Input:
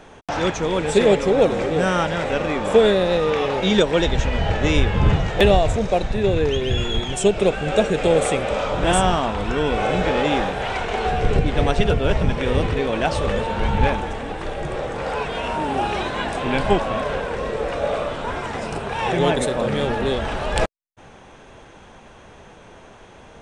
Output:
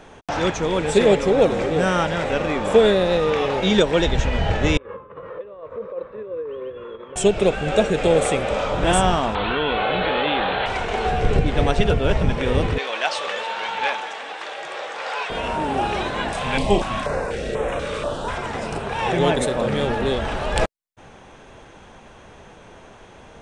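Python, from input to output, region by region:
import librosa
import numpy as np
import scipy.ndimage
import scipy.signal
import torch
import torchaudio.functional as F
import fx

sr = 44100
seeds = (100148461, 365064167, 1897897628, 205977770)

y = fx.chain(x, sr, fx.over_compress(threshold_db=-21.0, ratio=-1.0),
    fx.double_bandpass(hz=750.0, octaves=1.1),
    fx.air_absorb(metres=240.0), at=(4.77, 7.16))
y = fx.chain(y, sr, fx.cheby_ripple(hz=4300.0, ripple_db=3),
    fx.tilt_eq(slope=2.0),
    fx.env_flatten(amount_pct=70), at=(9.35, 10.66))
y = fx.chain(y, sr, fx.bandpass_edges(low_hz=740.0, high_hz=5800.0),
    fx.high_shelf(hz=2500.0, db=7.5), at=(12.78, 15.3))
y = fx.chain(y, sr, fx.high_shelf(hz=4100.0, db=6.5),
    fx.room_flutter(wall_m=5.9, rt60_s=0.24),
    fx.filter_held_notch(hz=4.1, low_hz=330.0, high_hz=4700.0), at=(16.33, 18.38))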